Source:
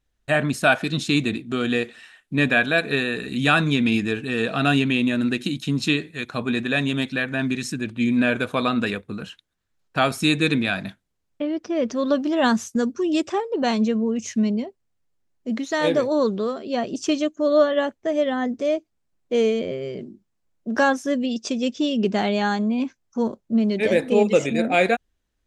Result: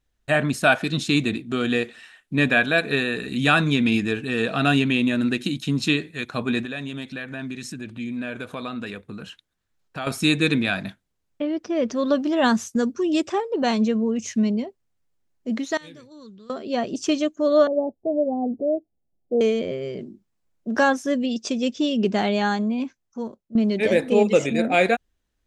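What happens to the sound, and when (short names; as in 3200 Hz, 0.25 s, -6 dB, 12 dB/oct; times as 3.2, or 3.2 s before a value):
6.65–10.07 compressor 2:1, threshold -35 dBFS
15.77–16.5 passive tone stack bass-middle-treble 6-0-2
17.67–19.41 elliptic low-pass 780 Hz, stop band 50 dB
22.49–23.55 fade out, to -16 dB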